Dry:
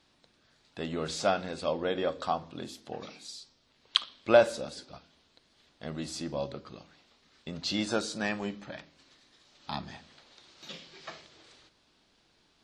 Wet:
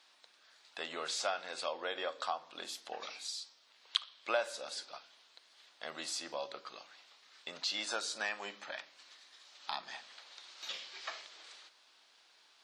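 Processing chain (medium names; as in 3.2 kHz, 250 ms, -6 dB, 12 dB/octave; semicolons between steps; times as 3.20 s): high-pass 820 Hz 12 dB/octave; compression 2:1, threshold -42 dBFS, peak gain reduction 13 dB; trim +4 dB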